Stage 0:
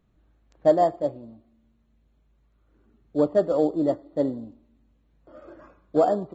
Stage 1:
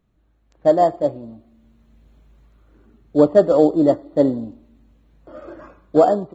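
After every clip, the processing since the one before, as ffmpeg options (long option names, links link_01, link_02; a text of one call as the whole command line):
ffmpeg -i in.wav -af "dynaudnorm=framelen=300:gausssize=5:maxgain=14dB" out.wav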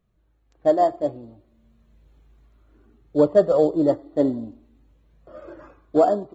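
ffmpeg -i in.wav -af "flanger=delay=1.6:depth=1.5:regen=-51:speed=0.57:shape=triangular" out.wav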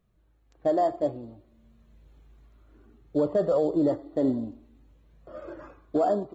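ffmpeg -i in.wav -af "alimiter=limit=-16dB:level=0:latency=1:release=48" out.wav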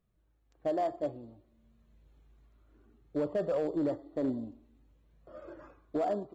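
ffmpeg -i in.wav -af "asoftclip=type=hard:threshold=-18dB,volume=-7dB" out.wav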